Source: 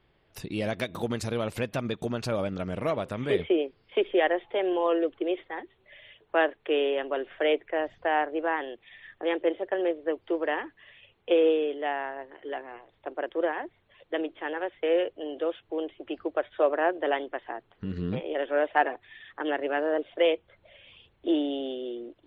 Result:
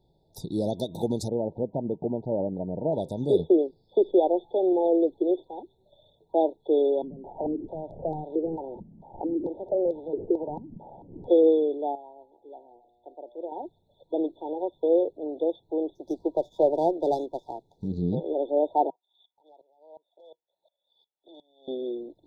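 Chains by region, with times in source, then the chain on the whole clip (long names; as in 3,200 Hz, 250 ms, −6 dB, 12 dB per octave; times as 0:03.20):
0:01.28–0:02.93: low-pass filter 1,400 Hz 24 dB per octave + low-shelf EQ 110 Hz −8.5 dB
0:07.02–0:11.30: linear delta modulator 16 kbit/s, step −37.5 dBFS + downward compressor 3 to 1, threshold −34 dBFS + low-pass on a step sequencer 4.5 Hz 210–2,400 Hz
0:11.95–0:13.52: parametric band 150 Hz −14 dB 0.38 octaves + tuned comb filter 120 Hz, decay 2 s, mix 70%
0:15.95–0:17.88: high-shelf EQ 4,000 Hz +4 dB + windowed peak hold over 3 samples
0:18.90–0:21.68: high-pass filter 880 Hz + downward compressor 12 to 1, threshold −39 dBFS + tremolo with a ramp in dB swelling 2.8 Hz, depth 27 dB
whole clip: dynamic equaliser 340 Hz, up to +5 dB, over −37 dBFS, Q 1.2; brick-wall band-stop 950–3,400 Hz; parametric band 160 Hz +6.5 dB 0.35 octaves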